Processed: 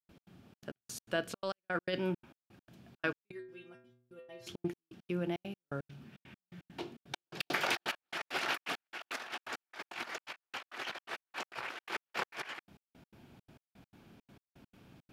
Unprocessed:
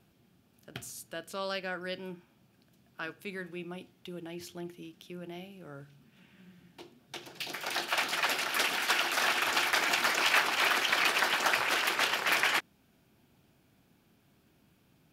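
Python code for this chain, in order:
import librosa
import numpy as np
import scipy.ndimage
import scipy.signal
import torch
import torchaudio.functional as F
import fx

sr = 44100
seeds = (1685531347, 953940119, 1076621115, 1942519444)

y = fx.lowpass(x, sr, hz=3200.0, slope=6)
y = fx.over_compress(y, sr, threshold_db=-38.0, ratio=-0.5)
y = fx.step_gate(y, sr, bpm=168, pattern='.x.xxx.x.', floor_db=-60.0, edge_ms=4.5)
y = fx.stiff_resonator(y, sr, f0_hz=120.0, decay_s=0.69, stiffness=0.008, at=(3.3, 4.46), fade=0.02)
y = y * librosa.db_to_amplitude(2.5)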